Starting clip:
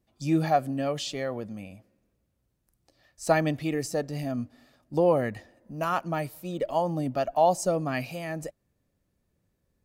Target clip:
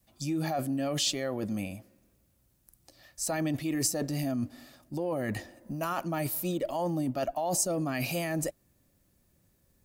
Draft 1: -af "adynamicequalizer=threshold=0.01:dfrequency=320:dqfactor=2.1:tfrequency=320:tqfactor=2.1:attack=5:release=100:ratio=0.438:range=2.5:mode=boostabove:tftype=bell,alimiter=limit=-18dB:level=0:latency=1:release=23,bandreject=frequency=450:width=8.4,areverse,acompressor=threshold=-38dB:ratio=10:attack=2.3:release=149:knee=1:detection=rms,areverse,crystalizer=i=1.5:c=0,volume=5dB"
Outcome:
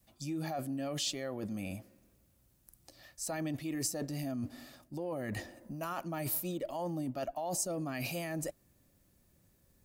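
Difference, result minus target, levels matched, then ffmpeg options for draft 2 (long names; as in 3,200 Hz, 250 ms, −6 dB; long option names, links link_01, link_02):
downward compressor: peak gain reduction +6.5 dB
-af "adynamicequalizer=threshold=0.01:dfrequency=320:dqfactor=2.1:tfrequency=320:tqfactor=2.1:attack=5:release=100:ratio=0.438:range=2.5:mode=boostabove:tftype=bell,alimiter=limit=-18dB:level=0:latency=1:release=23,bandreject=frequency=450:width=8.4,areverse,acompressor=threshold=-31dB:ratio=10:attack=2.3:release=149:knee=1:detection=rms,areverse,crystalizer=i=1.5:c=0,volume=5dB"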